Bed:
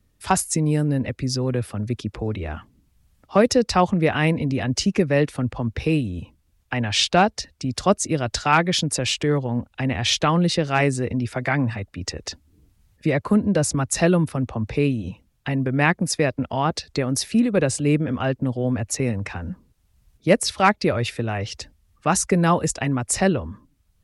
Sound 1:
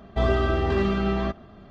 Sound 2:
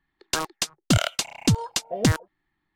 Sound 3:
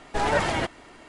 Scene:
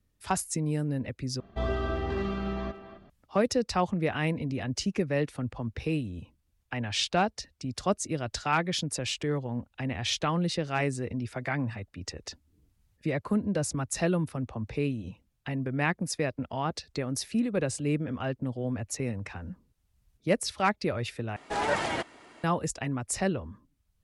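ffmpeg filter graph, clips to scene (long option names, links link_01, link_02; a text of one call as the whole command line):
ffmpeg -i bed.wav -i cue0.wav -i cue1.wav -i cue2.wav -filter_complex "[0:a]volume=-9dB[link_01];[1:a]asplit=2[link_02][link_03];[link_03]adelay=260,highpass=300,lowpass=3400,asoftclip=type=hard:threshold=-20dB,volume=-11dB[link_04];[link_02][link_04]amix=inputs=2:normalize=0[link_05];[3:a]highpass=frequency=170:poles=1[link_06];[link_01]asplit=3[link_07][link_08][link_09];[link_07]atrim=end=1.404[link_10];[link_05]atrim=end=1.7,asetpts=PTS-STARTPTS,volume=-8dB[link_11];[link_08]atrim=start=3.096:end=21.364[link_12];[link_06]atrim=end=1.08,asetpts=PTS-STARTPTS,volume=-4dB[link_13];[link_09]atrim=start=22.436[link_14];[link_10][link_11]acrossfade=duration=0.004:curve1=hsin:curve2=hsin[link_15];[link_15][link_12]acrossfade=duration=0.004:curve1=hsin:curve2=hsin[link_16];[link_16][link_13]acrossfade=duration=0.004:curve1=hsin:curve2=hsin[link_17];[link_17][link_14]acrossfade=duration=0.004:curve1=hsin:curve2=hsin" out.wav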